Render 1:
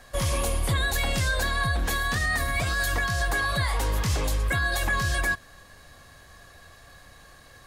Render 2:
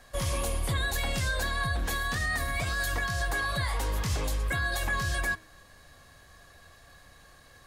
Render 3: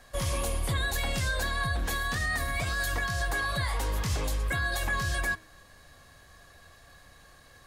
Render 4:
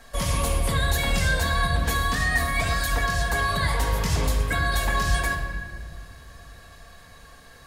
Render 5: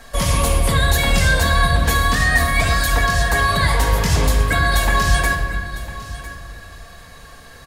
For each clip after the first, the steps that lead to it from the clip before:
hum removal 106.4 Hz, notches 27; level −4 dB
no processing that can be heard
rectangular room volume 2,400 cubic metres, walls mixed, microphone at 1.6 metres; level +4 dB
single-tap delay 1,003 ms −16 dB; level +7 dB

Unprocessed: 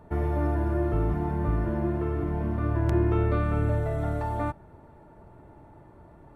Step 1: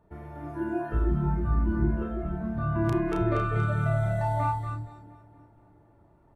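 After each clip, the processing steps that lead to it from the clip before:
double-tracking delay 33 ms −4.5 dB
echo with a time of its own for lows and highs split 410 Hz, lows 316 ms, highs 236 ms, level −3 dB
noise reduction from a noise print of the clip's start 13 dB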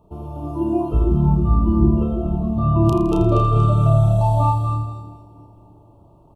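elliptic band-stop filter 1,200–2,700 Hz, stop band 40 dB
repeating echo 82 ms, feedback 60%, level −10 dB
level +9 dB

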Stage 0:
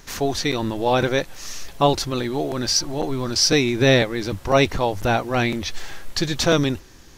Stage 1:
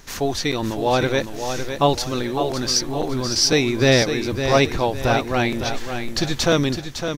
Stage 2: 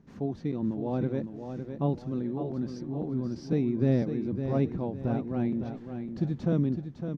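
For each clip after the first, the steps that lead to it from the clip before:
repeating echo 558 ms, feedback 36%, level −8 dB
resonant band-pass 190 Hz, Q 2.1

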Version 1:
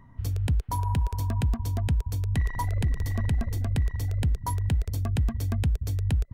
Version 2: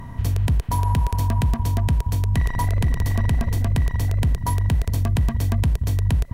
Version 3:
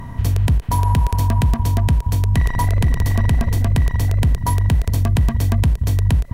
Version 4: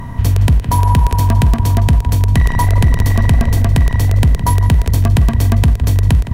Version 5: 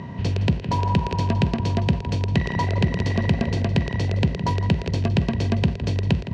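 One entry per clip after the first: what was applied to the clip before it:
compressor on every frequency bin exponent 0.6; level +3.5 dB
every ending faded ahead of time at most 550 dB per second; level +4 dB
tape delay 163 ms, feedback 40%, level −10 dB, low-pass 4,200 Hz; level +5 dB
loudspeaker in its box 110–5,700 Hz, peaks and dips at 180 Hz +8 dB, 380 Hz +8 dB, 540 Hz +6 dB, 1,200 Hz −6 dB, 2,700 Hz +7 dB, 4,400 Hz +4 dB; level −7 dB

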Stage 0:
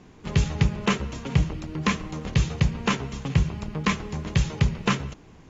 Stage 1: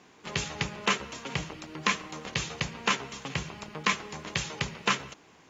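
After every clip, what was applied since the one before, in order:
high-pass filter 840 Hz 6 dB per octave
level +1.5 dB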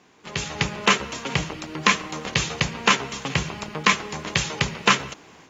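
automatic gain control gain up to 11.5 dB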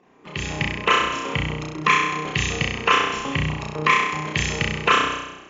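spectral envelope exaggerated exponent 2
on a send: flutter between parallel walls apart 5.6 metres, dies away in 0.96 s
on the sum: level −2 dB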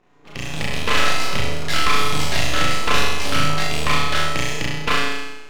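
half-wave rectification
delay with pitch and tempo change per echo 254 ms, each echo +4 semitones, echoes 3
flutter between parallel walls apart 6.8 metres, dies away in 0.7 s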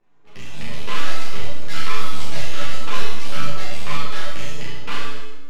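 on a send at −6 dB: convolution reverb RT60 0.95 s, pre-delay 5 ms
on the sum: string-ensemble chorus
level −6.5 dB

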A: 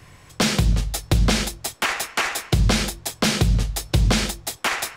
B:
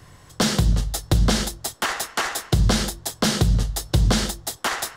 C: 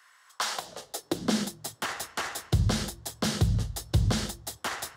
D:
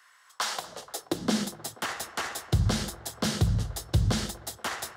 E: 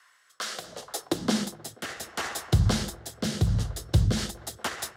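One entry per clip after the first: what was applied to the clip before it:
parametric band 2,400 Hz −10 dB 0.37 octaves
high-pass filter sweep 1,400 Hz → 78 Hz, 0:00.23–0:02.01; level −8.5 dB
delay with a band-pass on its return 240 ms, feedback 82%, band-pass 850 Hz, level −17 dB
rotating-speaker cabinet horn 0.7 Hz, later 5 Hz, at 0:03.32; level +3 dB

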